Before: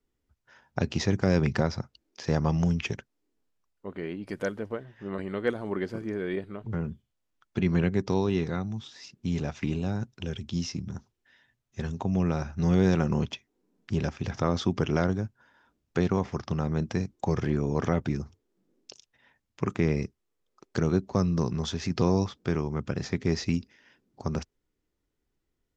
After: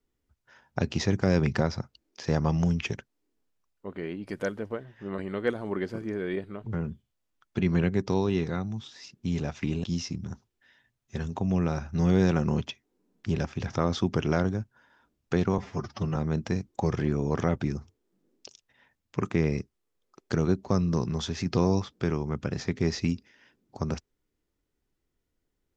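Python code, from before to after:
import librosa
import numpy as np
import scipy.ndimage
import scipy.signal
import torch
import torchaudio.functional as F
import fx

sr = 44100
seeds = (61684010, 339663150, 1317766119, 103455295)

y = fx.edit(x, sr, fx.cut(start_s=9.84, length_s=0.64),
    fx.stretch_span(start_s=16.22, length_s=0.39, factor=1.5), tone=tone)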